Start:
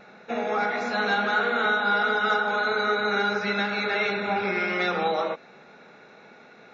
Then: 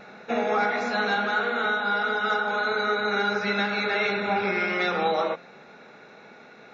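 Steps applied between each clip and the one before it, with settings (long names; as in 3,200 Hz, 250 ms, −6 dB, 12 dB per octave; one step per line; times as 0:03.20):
hum removal 176.8 Hz, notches 21
speech leveller within 4 dB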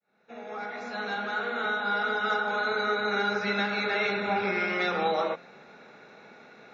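fade in at the beginning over 2.01 s
level −2.5 dB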